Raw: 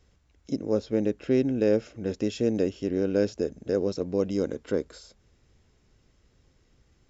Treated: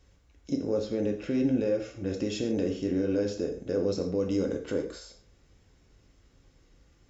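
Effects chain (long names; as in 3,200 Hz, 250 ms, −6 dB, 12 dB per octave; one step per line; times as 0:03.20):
brickwall limiter −20 dBFS, peak gain reduction 8.5 dB
0:01.64–0:02.05: notch comb filter 220 Hz
reverb whose tail is shaped and stops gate 170 ms falling, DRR 2 dB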